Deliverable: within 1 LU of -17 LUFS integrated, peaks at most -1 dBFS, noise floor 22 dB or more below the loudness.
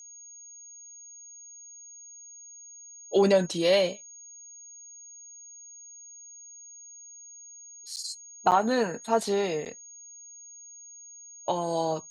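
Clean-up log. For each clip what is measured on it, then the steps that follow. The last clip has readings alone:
dropouts 3; longest dropout 8.7 ms; steady tone 6.6 kHz; tone level -45 dBFS; loudness -26.5 LUFS; peak level -9.5 dBFS; loudness target -17.0 LUFS
-> interpolate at 7.96/8.51/9.65 s, 8.7 ms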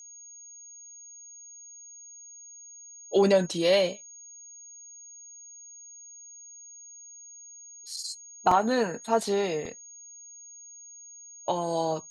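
dropouts 0; steady tone 6.6 kHz; tone level -45 dBFS
-> band-stop 6.6 kHz, Q 30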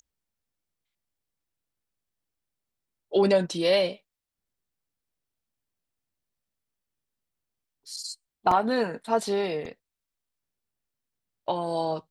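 steady tone not found; loudness -26.5 LUFS; peak level -9.5 dBFS; loudness target -17.0 LUFS
-> trim +9.5 dB; peak limiter -1 dBFS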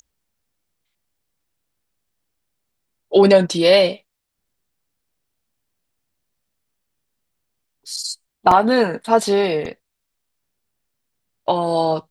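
loudness -17.0 LUFS; peak level -1.0 dBFS; noise floor -77 dBFS

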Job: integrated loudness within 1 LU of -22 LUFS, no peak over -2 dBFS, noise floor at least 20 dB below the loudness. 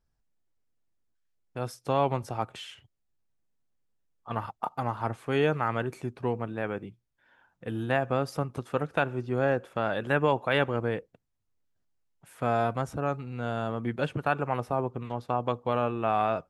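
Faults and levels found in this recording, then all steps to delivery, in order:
loudness -30.0 LUFS; peak level -11.0 dBFS; loudness target -22.0 LUFS
-> trim +8 dB

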